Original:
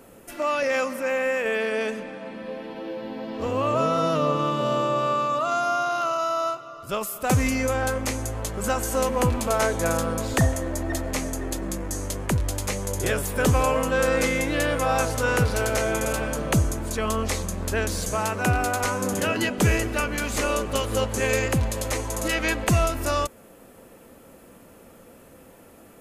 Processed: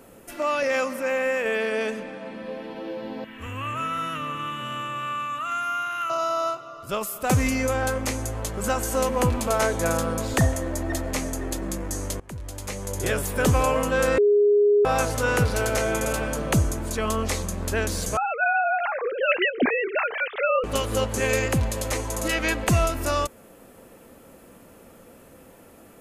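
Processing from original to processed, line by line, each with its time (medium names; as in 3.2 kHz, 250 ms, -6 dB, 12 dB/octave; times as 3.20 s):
3.24–6.10 s: FFT filter 100 Hz 0 dB, 150 Hz -11 dB, 260 Hz -9 dB, 370 Hz -15 dB, 620 Hz -19 dB, 1.7 kHz +4 dB, 2.9 kHz +2 dB, 4.8 kHz -19 dB, 6.9 kHz -3 dB, 12 kHz +4 dB
12.20–13.16 s: fade in linear, from -21.5 dB
14.18–14.85 s: bleep 412 Hz -14.5 dBFS
18.17–20.64 s: formants replaced by sine waves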